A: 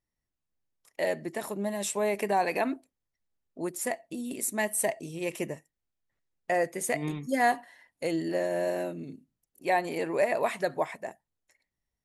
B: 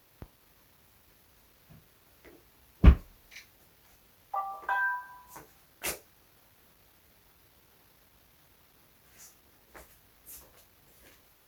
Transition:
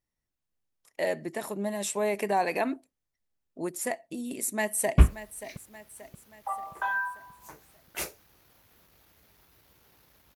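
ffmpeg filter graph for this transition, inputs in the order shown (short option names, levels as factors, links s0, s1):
-filter_complex "[0:a]apad=whole_dur=10.35,atrim=end=10.35,atrim=end=4.982[s0];[1:a]atrim=start=2.848:end=8.22[s1];[s0][s1]acrossfade=d=0.004:c1=hsin:c2=hsin,asplit=2[s2][s3];[s3]afade=t=in:st=4.27:d=0.01,afade=t=out:st=4.98:d=0.01,aecho=0:1:580|1160|1740|2320|2900:0.211349|0.105674|0.0528372|0.0264186|0.0132093[s4];[s2][s4]amix=inputs=2:normalize=0"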